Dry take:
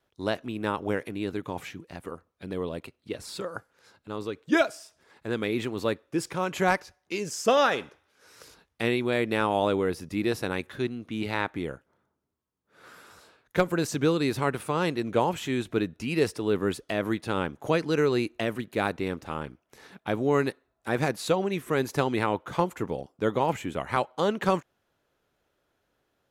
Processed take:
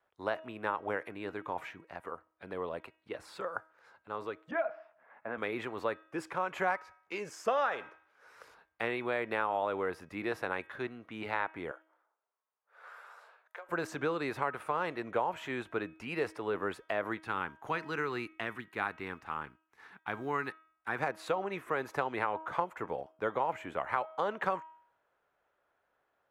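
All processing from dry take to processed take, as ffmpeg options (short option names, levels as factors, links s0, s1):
-filter_complex "[0:a]asettb=1/sr,asplit=3[s0][s1][s2];[s0]atrim=end=4.514[s3];[s1]atrim=start=4.51:end=5.38,asetpts=PTS-STARTPTS,afade=t=in:d=0.004:c=qsin,afade=t=out:st=0.866:d=0.004:c=qsin,acompressor=threshold=0.0501:ratio=6:attack=3.2:release=140:knee=1:detection=peak,highpass=150,equalizer=f=230:t=q:w=4:g=5,equalizer=f=390:t=q:w=4:g=-10,equalizer=f=650:t=q:w=4:g=8,lowpass=f=2500:w=0.5412,lowpass=f=2500:w=1.3066,asplit=2[s4][s5];[s5]adelay=16,volume=0.211[s6];[s4][s6]amix=inputs=2:normalize=0,atrim=end_sample=38367[s7];[s2]atrim=start=5.376[s8];[s3][s7]acrossfade=d=0.004:c1=hsin:c2=qsin[s9];[s9][s8]acrossfade=d=0.004:c1=qsin:c2=hsin,asettb=1/sr,asplit=3[s10][s11][s12];[s10]atrim=end=11.714[s13];[s11]atrim=start=11.71:end=13.69,asetpts=PTS-STARTPTS,afade=t=in:d=0.004:c=qsin,afade=t=out:st=1.976:d=0.004:c=qsin,highpass=f=470:w=0.5412,highpass=f=470:w=1.3066,acompressor=threshold=0.01:ratio=12:attack=3.2:release=140:knee=1:detection=peak[s14];[s12]atrim=start=13.686[s15];[s13][s14]acrossfade=d=0.004:c1=hsin:c2=qsin[s16];[s16][s15]acrossfade=d=0.004:c1=qsin:c2=hsin,asettb=1/sr,asplit=3[s17][s18][s19];[s17]atrim=end=17.184[s20];[s18]atrim=start=17.18:end=20.99,asetpts=PTS-STARTPTS,afade=t=in:d=0.004:c=qsin,afade=t=out:st=3.806:d=0.004:c=qsin,equalizer=f=570:w=1.8:g=-13,agate=range=0.447:threshold=0.00158:ratio=16:release=100:detection=peak,acrusher=bits=9:mode=log:mix=0:aa=0.000001[s21];[s19]atrim=start=20.986[s22];[s20][s21]acrossfade=d=0.004:c1=hsin:c2=qsin[s23];[s23][s22]acrossfade=d=0.004:c1=qsin:c2=hsin,acrossover=split=570 2100:gain=0.158 1 0.126[s24][s25][s26];[s24][s25][s26]amix=inputs=3:normalize=0,bandreject=f=318.2:t=h:w=4,bandreject=f=636.4:t=h:w=4,bandreject=f=954.6:t=h:w=4,bandreject=f=1272.8:t=h:w=4,bandreject=f=1591:t=h:w=4,bandreject=f=1909.2:t=h:w=4,bandreject=f=2227.4:t=h:w=4,bandreject=f=2545.6:t=h:w=4,bandreject=f=2863.8:t=h:w=4,bandreject=f=3182:t=h:w=4,bandreject=f=3500.2:t=h:w=4,acompressor=threshold=0.0282:ratio=3,volume=1.33"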